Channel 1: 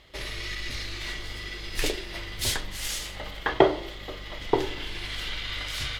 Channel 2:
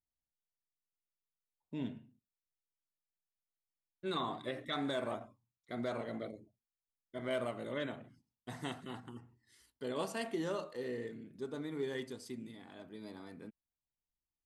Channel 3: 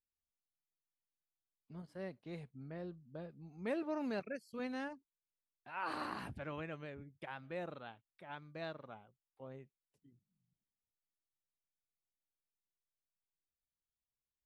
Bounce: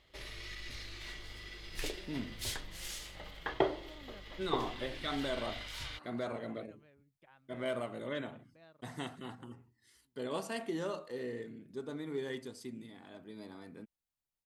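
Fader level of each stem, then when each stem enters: −11.5, 0.0, −16.0 decibels; 0.00, 0.35, 0.00 seconds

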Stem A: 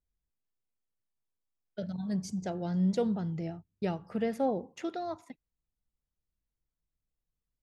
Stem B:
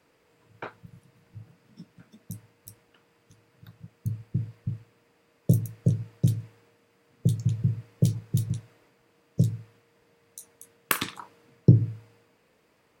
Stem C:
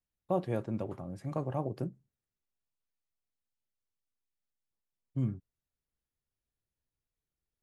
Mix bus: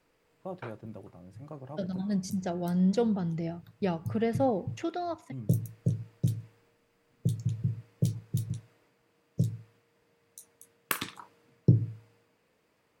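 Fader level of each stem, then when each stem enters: +2.5, −5.5, −9.0 decibels; 0.00, 0.00, 0.15 seconds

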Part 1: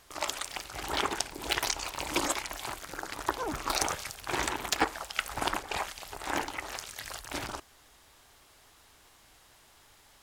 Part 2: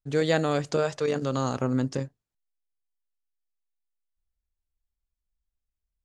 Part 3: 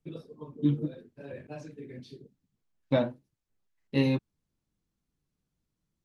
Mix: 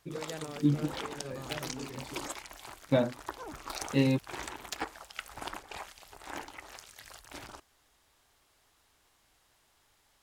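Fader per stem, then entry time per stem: −9.5, −18.5, −0.5 decibels; 0.00, 0.00, 0.00 seconds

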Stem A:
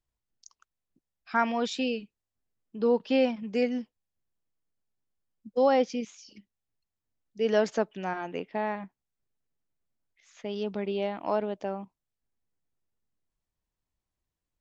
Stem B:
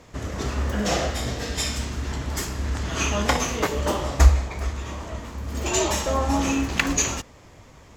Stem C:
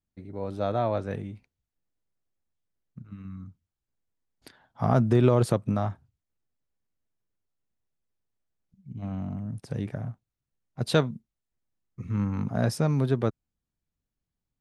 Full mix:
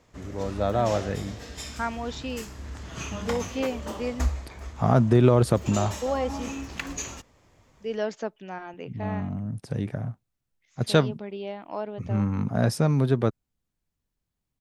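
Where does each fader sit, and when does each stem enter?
−4.5, −11.5, +2.5 decibels; 0.45, 0.00, 0.00 seconds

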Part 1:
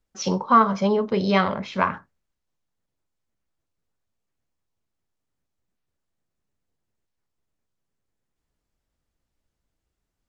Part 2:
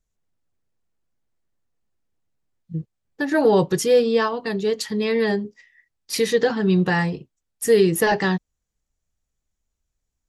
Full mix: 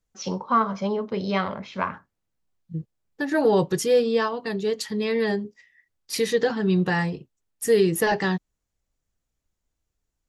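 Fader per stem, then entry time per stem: −5.0, −3.0 decibels; 0.00, 0.00 seconds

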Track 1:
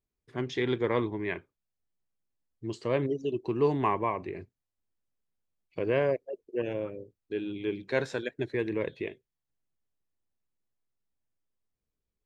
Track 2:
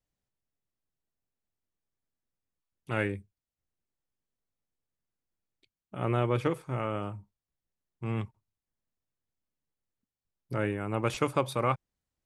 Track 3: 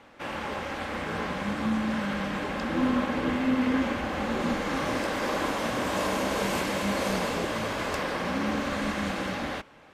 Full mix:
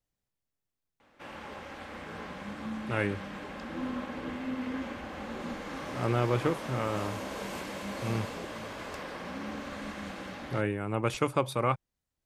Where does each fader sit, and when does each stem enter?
muted, 0.0 dB, −10.0 dB; muted, 0.00 s, 1.00 s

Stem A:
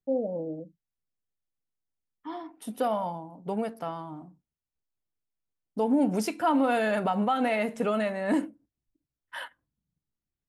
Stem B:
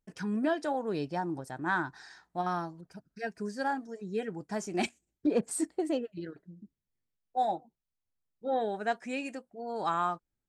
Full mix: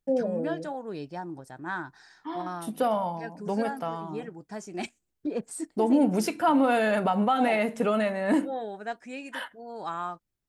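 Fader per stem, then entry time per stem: +2.0, −3.5 decibels; 0.00, 0.00 seconds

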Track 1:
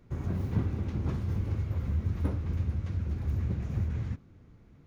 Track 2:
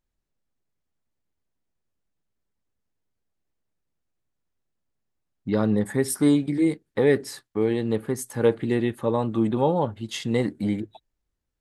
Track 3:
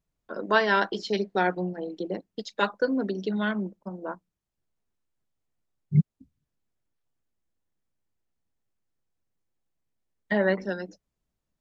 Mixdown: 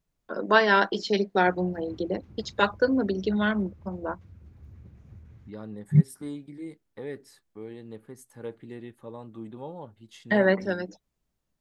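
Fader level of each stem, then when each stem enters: −18.0, −17.5, +2.5 decibels; 1.35, 0.00, 0.00 seconds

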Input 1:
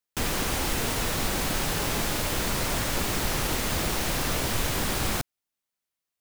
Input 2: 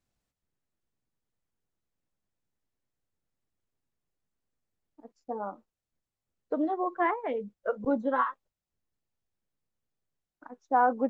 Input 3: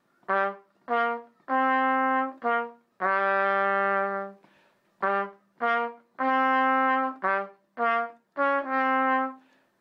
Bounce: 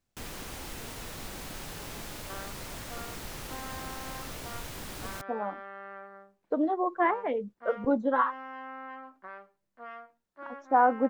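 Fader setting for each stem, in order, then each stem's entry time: −13.5, +1.5, −19.5 decibels; 0.00, 0.00, 2.00 seconds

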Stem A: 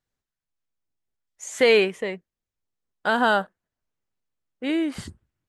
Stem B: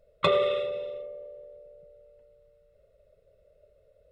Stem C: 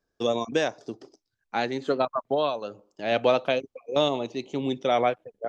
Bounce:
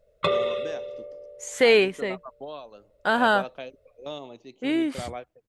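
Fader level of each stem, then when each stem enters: −0.5, −0.5, −13.5 decibels; 0.00, 0.00, 0.10 seconds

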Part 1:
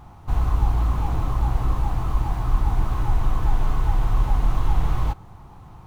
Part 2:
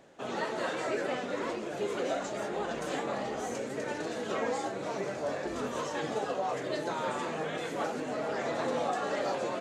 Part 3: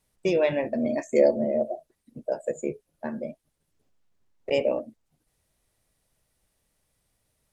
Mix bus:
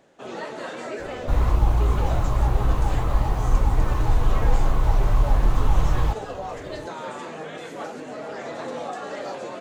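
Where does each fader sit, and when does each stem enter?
+1.0, −0.5, −18.5 decibels; 1.00, 0.00, 0.00 seconds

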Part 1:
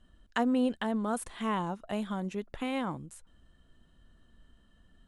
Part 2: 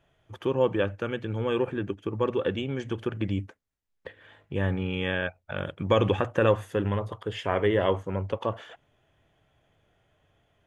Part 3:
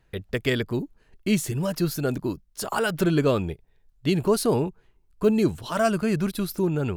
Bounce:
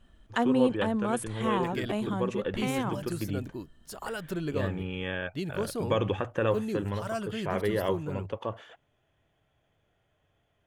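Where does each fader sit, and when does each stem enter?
+2.0, −5.0, −11.5 decibels; 0.00, 0.00, 1.30 seconds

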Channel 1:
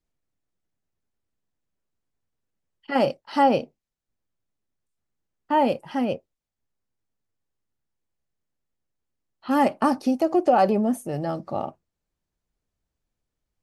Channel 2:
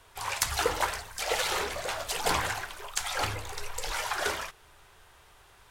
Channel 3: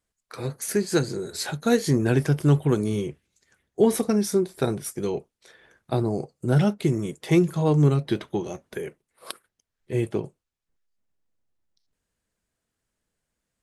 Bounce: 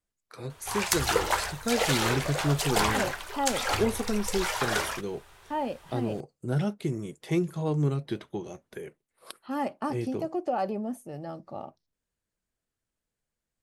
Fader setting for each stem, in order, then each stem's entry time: −10.5, +2.0, −7.5 decibels; 0.00, 0.50, 0.00 seconds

